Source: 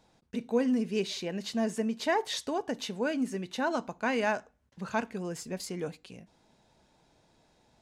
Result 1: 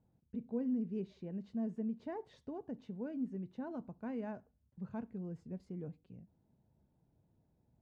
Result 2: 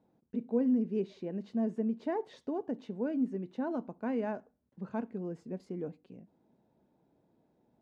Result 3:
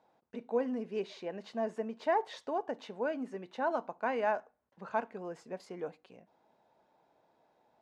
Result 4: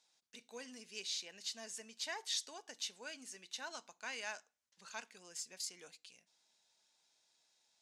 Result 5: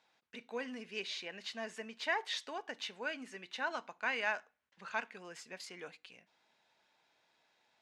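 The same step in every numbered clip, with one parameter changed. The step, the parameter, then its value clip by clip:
band-pass filter, frequency: 100 Hz, 270 Hz, 750 Hz, 6.3 kHz, 2.2 kHz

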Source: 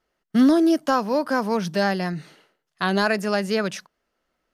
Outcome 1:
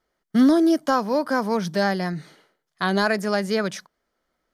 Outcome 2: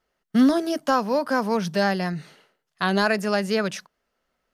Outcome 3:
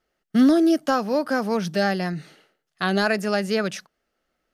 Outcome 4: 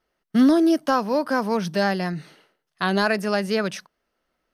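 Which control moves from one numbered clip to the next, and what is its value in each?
band-stop, frequency: 2.7 kHz, 320 Hz, 990 Hz, 7.1 kHz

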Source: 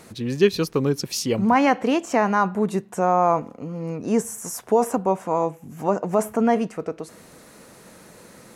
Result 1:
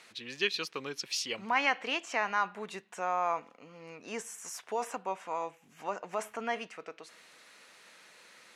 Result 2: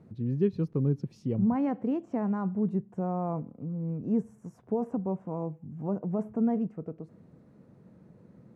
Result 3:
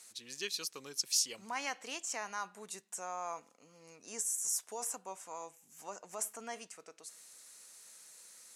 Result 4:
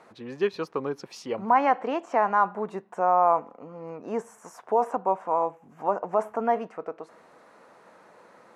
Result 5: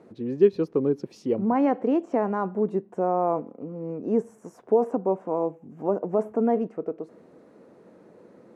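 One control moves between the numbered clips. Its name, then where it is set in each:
band-pass filter, frequency: 2.8 kHz, 130 Hz, 7.7 kHz, 930 Hz, 370 Hz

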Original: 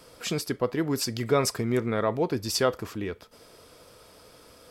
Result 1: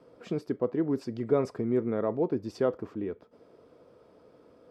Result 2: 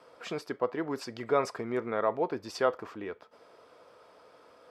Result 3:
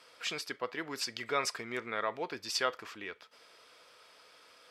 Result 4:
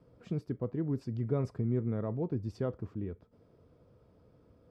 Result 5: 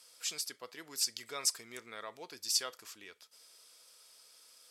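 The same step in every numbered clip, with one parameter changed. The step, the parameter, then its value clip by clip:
band-pass filter, frequency: 320 Hz, 870 Hz, 2.3 kHz, 110 Hz, 7.6 kHz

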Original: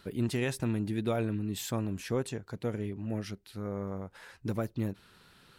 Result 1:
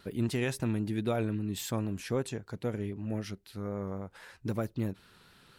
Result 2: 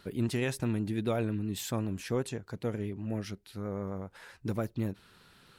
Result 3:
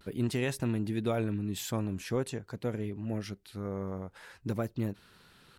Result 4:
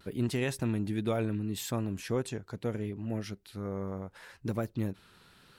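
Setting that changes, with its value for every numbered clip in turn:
vibrato, rate: 3.8 Hz, 7.7 Hz, 0.46 Hz, 0.74 Hz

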